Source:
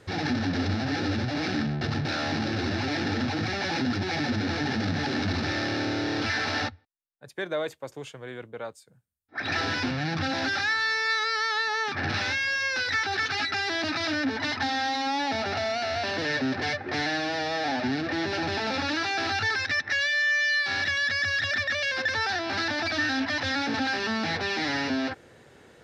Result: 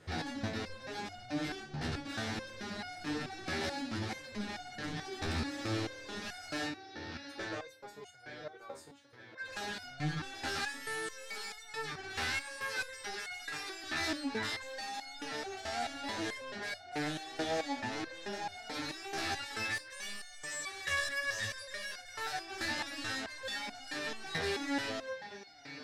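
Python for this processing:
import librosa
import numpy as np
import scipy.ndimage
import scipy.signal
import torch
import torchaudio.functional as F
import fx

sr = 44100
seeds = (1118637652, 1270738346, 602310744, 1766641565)

y = fx.echo_feedback(x, sr, ms=902, feedback_pct=34, wet_db=-10.5)
y = fx.fold_sine(y, sr, drive_db=9, ceiling_db=-14.5)
y = fx.resonator_held(y, sr, hz=4.6, low_hz=80.0, high_hz=720.0)
y = y * 10.0 ** (-8.0 / 20.0)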